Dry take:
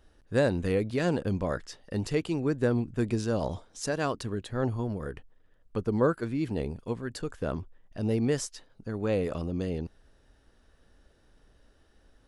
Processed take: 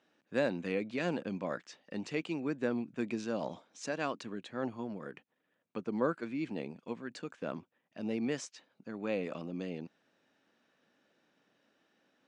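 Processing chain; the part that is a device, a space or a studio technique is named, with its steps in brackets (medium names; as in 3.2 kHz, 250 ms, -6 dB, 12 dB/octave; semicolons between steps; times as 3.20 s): television speaker (cabinet simulation 180–6900 Hz, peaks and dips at 420 Hz -5 dB, 2.4 kHz +7 dB, 5 kHz -4 dB); trim -5 dB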